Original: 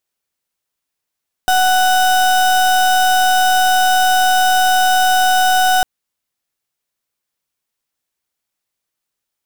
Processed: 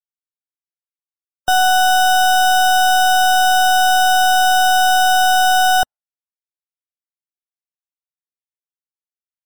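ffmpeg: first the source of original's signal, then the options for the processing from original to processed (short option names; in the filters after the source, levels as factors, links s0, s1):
-f lavfi -i "aevalsrc='0.237*(2*lt(mod(743*t,1),0.33)-1)':d=4.35:s=44100"
-filter_complex "[0:a]acrossover=split=540|7300[s0][s1][s2];[s2]acrusher=bits=5:mix=0:aa=0.000001[s3];[s0][s1][s3]amix=inputs=3:normalize=0,afftdn=nr=35:nf=-28"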